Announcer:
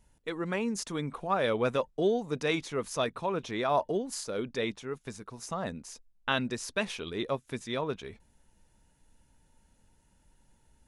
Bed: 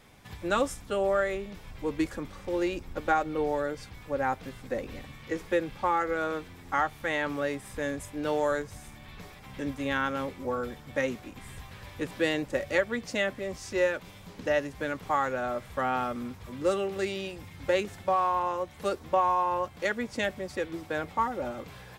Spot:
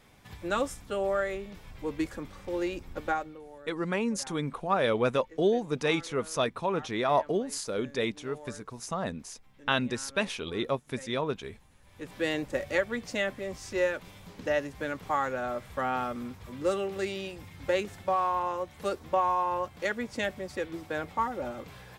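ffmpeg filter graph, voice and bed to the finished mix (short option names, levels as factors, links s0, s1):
-filter_complex "[0:a]adelay=3400,volume=1.26[s0];[1:a]volume=5.96,afade=t=out:st=3.05:d=0.35:silence=0.141254,afade=t=in:st=11.84:d=0.49:silence=0.125893[s1];[s0][s1]amix=inputs=2:normalize=0"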